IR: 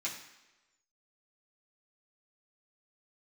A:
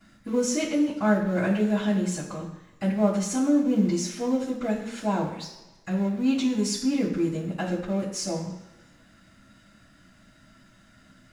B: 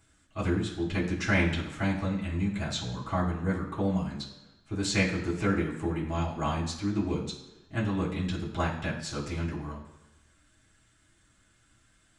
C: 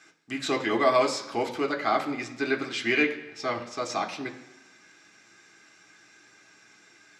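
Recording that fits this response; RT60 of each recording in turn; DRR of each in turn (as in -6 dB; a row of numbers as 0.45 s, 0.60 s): B; 1.1 s, 1.1 s, 1.1 s; -16.5 dB, -7.5 dB, 2.0 dB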